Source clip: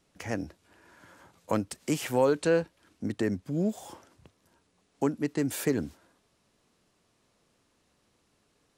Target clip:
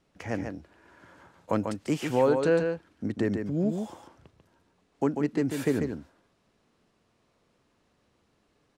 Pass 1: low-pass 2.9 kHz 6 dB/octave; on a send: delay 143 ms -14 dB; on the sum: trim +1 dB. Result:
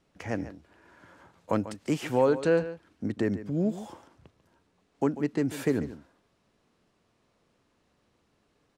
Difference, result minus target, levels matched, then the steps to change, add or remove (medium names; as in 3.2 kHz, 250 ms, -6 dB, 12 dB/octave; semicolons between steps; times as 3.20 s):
echo-to-direct -8 dB
change: delay 143 ms -6 dB